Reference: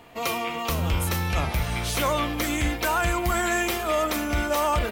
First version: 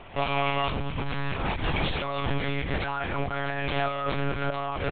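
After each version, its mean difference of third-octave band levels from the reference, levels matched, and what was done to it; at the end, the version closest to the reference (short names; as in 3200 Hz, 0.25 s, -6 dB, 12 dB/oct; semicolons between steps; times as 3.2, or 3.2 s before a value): 13.0 dB: negative-ratio compressor -29 dBFS, ratio -1; echo 0.622 s -22.5 dB; monotone LPC vocoder at 8 kHz 140 Hz; gain +1 dB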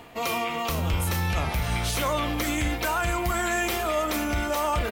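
1.0 dB: limiter -19 dBFS, peak gain reduction 4.5 dB; reverse; upward compressor, threshold -31 dBFS; reverse; doubler 33 ms -13.5 dB; gain +1 dB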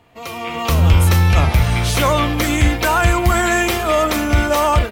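3.0 dB: high shelf 11000 Hz -5.5 dB; AGC gain up to 16.5 dB; bell 95 Hz +8 dB 1 oct; gain -5 dB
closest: second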